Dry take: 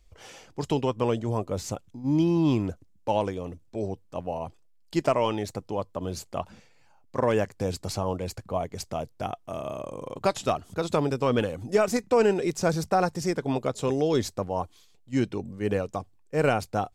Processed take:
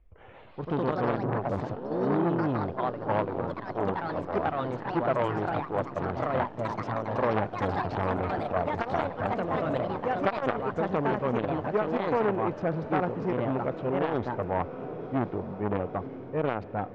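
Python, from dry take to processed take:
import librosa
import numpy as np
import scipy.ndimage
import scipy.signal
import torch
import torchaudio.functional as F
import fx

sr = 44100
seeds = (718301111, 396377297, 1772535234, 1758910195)

y = fx.wiener(x, sr, points=9)
y = scipy.signal.sosfilt(scipy.signal.bessel(4, 2000.0, 'lowpass', norm='mag', fs=sr, output='sos'), y)
y = fx.echo_diffused(y, sr, ms=1026, feedback_pct=64, wet_db=-15)
y = fx.rider(y, sr, range_db=3, speed_s=0.5)
y = fx.echo_pitch(y, sr, ms=183, semitones=3, count=3, db_per_echo=-3.0)
y = fx.transformer_sat(y, sr, knee_hz=1100.0)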